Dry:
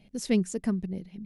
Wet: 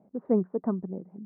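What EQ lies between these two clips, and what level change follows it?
Bessel high-pass filter 320 Hz, order 2
Butterworth low-pass 1,200 Hz 36 dB per octave
dynamic equaliser 880 Hz, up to +3 dB, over −44 dBFS, Q 1.2
+5.0 dB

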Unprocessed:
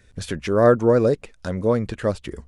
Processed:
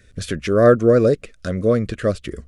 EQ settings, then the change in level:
Butterworth band-reject 880 Hz, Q 2.1
+3.0 dB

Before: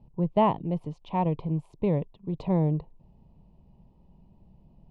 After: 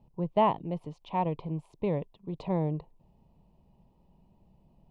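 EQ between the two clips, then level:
low-shelf EQ 330 Hz −7.5 dB
0.0 dB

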